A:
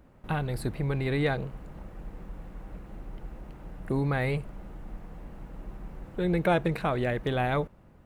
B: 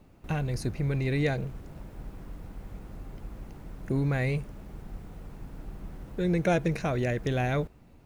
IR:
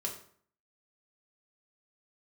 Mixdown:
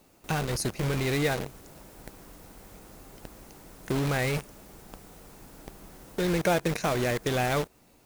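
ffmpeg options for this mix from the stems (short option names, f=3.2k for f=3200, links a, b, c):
-filter_complex "[0:a]acrusher=bits=4:mix=0:aa=0.000001,volume=-3.5dB[a];[1:a]lowshelf=f=160:g=-7.5,acompressor=threshold=-32dB:ratio=6,bass=f=250:g=-6,treble=f=4k:g=12,volume=1dB[b];[a][b]amix=inputs=2:normalize=0"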